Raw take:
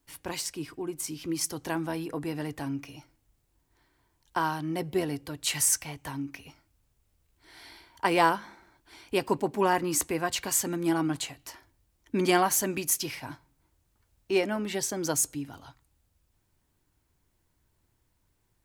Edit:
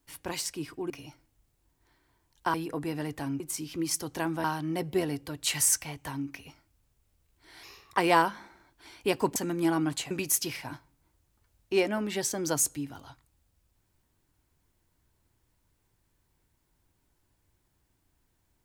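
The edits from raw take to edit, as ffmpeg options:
-filter_complex "[0:a]asplit=9[a][b][c][d][e][f][g][h][i];[a]atrim=end=0.902[j];[b]atrim=start=2.798:end=4.442[k];[c]atrim=start=1.938:end=2.802[l];[d]atrim=start=0.898:end=1.942[m];[e]atrim=start=4.438:end=7.634[n];[f]atrim=start=7.63:end=8.05,asetpts=PTS-STARTPTS,asetrate=53361,aresample=44100,atrim=end_sample=15307,asetpts=PTS-STARTPTS[o];[g]atrim=start=8.046:end=9.432[p];[h]atrim=start=10.588:end=11.342[q];[i]atrim=start=12.688[r];[j][k]acrossfade=d=0.004:c1=hsin:c2=hsin[s];[s][l]acrossfade=d=0.004:c1=hsin:c2=hsin[t];[t][m]acrossfade=d=0.004:c1=hsin:c2=hsin[u];[u][n]acrossfade=d=0.004:c1=hsin:c2=hsin[v];[v][o]acrossfade=d=0.004:c1=hsin:c2=hsin[w];[w][p]acrossfade=d=0.004:c1=hsin:c2=hsin[x];[x][q]acrossfade=d=0.004:c1=hsin:c2=hsin[y];[y][r]acrossfade=d=0.004:c1=hsin:c2=hsin"

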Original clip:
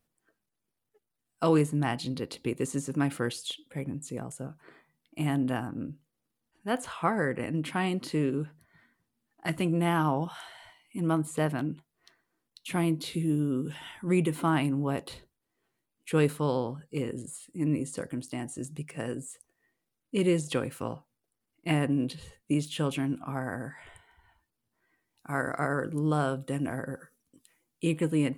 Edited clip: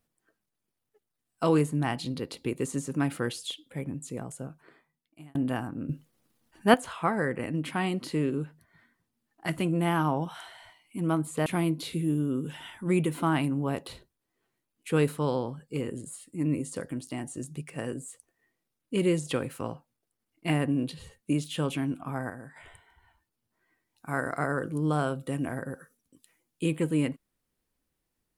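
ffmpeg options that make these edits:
-filter_complex "[0:a]asplit=7[a][b][c][d][e][f][g];[a]atrim=end=5.35,asetpts=PTS-STARTPTS,afade=t=out:st=4.42:d=0.93[h];[b]atrim=start=5.35:end=5.892,asetpts=PTS-STARTPTS,afade=t=in:d=0.004:c=hsin[i];[c]atrim=start=5.888:end=6.742,asetpts=PTS-STARTPTS,volume=11dB[j];[d]atrim=start=6.738:end=11.462[k];[e]atrim=start=12.668:end=23.512[l];[f]atrim=start=23.508:end=23.772,asetpts=PTS-STARTPTS,volume=-7dB[m];[g]atrim=start=23.768[n];[h][i]concat=n=2:v=0:a=1[o];[o][j]acrossfade=d=0.004:c1=hsin:c2=hsin[p];[p][k]acrossfade=d=0.004:c1=hsin:c2=hsin[q];[q][l]acrossfade=d=0.004:c1=hsin:c2=hsin[r];[r][m]acrossfade=d=0.004:c1=hsin:c2=hsin[s];[s][n]acrossfade=d=0.004:c1=hsin:c2=hsin"

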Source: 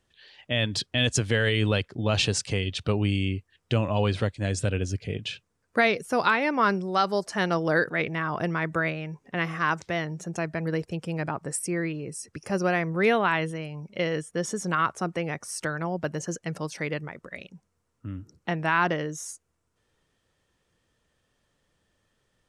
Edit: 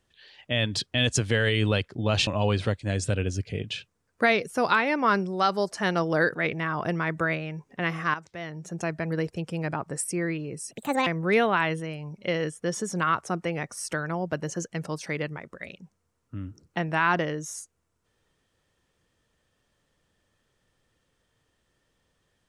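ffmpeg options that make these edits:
-filter_complex "[0:a]asplit=5[a][b][c][d][e];[a]atrim=end=2.272[f];[b]atrim=start=3.818:end=9.69,asetpts=PTS-STARTPTS,afade=t=out:st=5.868:d=0.004:c=hsin:silence=0.251189[g];[c]atrim=start=9.69:end=12.264,asetpts=PTS-STARTPTS,afade=t=in:d=0.63:c=qua:silence=0.251189[h];[d]atrim=start=12.26:end=12.78,asetpts=PTS-STARTPTS,asetrate=64386,aresample=44100[i];[e]atrim=start=12.776[j];[g][h]concat=n=2:v=0:a=1[k];[f][k]acrossfade=d=0.004:c1=hsin:c2=hsin[l];[l][i]acrossfade=d=0.004:c1=hsin:c2=hsin[m];[m][j]acrossfade=d=0.004:c1=hsin:c2=hsin"

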